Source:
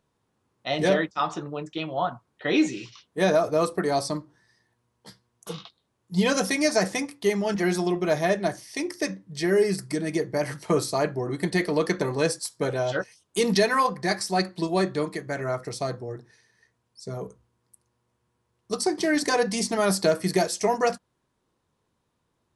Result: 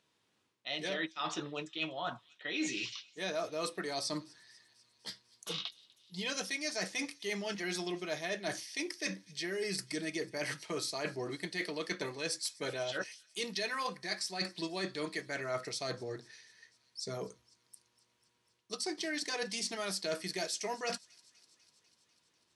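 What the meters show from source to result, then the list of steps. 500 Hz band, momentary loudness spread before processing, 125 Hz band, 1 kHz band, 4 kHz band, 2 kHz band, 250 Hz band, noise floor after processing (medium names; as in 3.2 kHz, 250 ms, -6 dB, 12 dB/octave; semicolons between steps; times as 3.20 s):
-15.0 dB, 12 LU, -16.5 dB, -14.5 dB, -4.5 dB, -8.0 dB, -15.0 dB, -76 dBFS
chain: frequency weighting D; reverse; compression 6:1, threshold -31 dBFS, peak gain reduction 17.5 dB; reverse; feedback comb 320 Hz, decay 0.17 s, harmonics all, mix 40%; feedback echo behind a high-pass 247 ms, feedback 71%, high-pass 3.2 kHz, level -21.5 dB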